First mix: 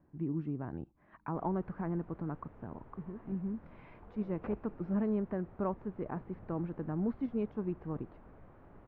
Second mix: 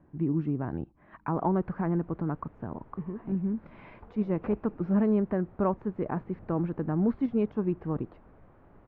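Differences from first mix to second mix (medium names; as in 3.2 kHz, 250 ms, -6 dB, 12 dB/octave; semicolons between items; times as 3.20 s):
speech +7.5 dB; second sound +3.5 dB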